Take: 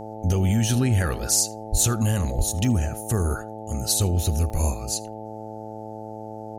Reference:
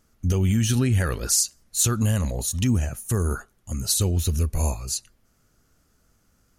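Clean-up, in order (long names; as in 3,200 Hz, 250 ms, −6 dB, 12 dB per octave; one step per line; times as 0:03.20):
hum removal 108.9 Hz, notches 8
0:01.71–0:01.83: high-pass filter 140 Hz 24 dB per octave
0:02.37–0:02.49: high-pass filter 140 Hz 24 dB per octave
repair the gap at 0:02.65/0:04.50, 1.3 ms
echo removal 78 ms −23.5 dB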